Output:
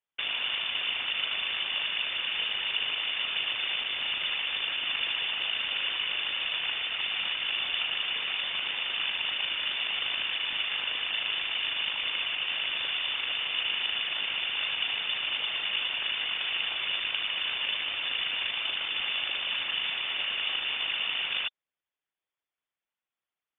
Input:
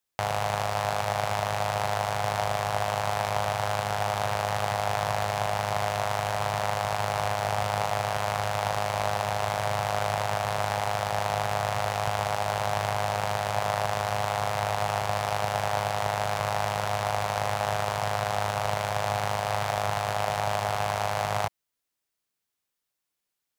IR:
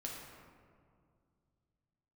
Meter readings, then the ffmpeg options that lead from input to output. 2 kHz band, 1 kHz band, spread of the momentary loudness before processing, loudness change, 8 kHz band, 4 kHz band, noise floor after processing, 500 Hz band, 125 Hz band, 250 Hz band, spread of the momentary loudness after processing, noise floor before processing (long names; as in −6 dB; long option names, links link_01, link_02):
+2.5 dB, −17.5 dB, 1 LU, 0.0 dB, below −40 dB, +10.5 dB, below −85 dBFS, −21.0 dB, below −25 dB, −14.0 dB, 1 LU, −84 dBFS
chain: -af "lowpass=frequency=3100:width_type=q:width=0.5098,lowpass=frequency=3100:width_type=q:width=0.6013,lowpass=frequency=3100:width_type=q:width=0.9,lowpass=frequency=3100:width_type=q:width=2.563,afreqshift=-3600,afftfilt=real='hypot(re,im)*cos(2*PI*random(0))':imag='hypot(re,im)*sin(2*PI*random(1))':win_size=512:overlap=0.75,volume=3dB"